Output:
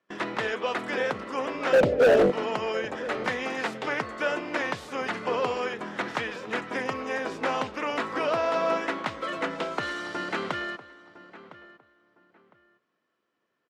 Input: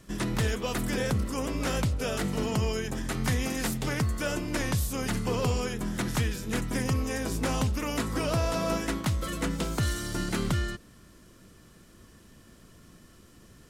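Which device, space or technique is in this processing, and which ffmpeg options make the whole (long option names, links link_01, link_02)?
walkie-talkie: -filter_complex "[0:a]asplit=3[link_01][link_02][link_03];[link_01]afade=type=out:start_time=1.72:duration=0.02[link_04];[link_02]lowshelf=frequency=770:width_type=q:width=3:gain=12,afade=type=in:start_time=1.72:duration=0.02,afade=type=out:start_time=2.3:duration=0.02[link_05];[link_03]afade=type=in:start_time=2.3:duration=0.02[link_06];[link_04][link_05][link_06]amix=inputs=3:normalize=0,highpass=490,lowpass=2500,asoftclip=type=hard:threshold=-21.5dB,agate=range=-22dB:threshold=-50dB:ratio=16:detection=peak,asplit=2[link_07][link_08];[link_08]adelay=1008,lowpass=frequency=2200:poles=1,volume=-16dB,asplit=2[link_09][link_10];[link_10]adelay=1008,lowpass=frequency=2200:poles=1,volume=0.25[link_11];[link_07][link_09][link_11]amix=inputs=3:normalize=0,volume=6.5dB"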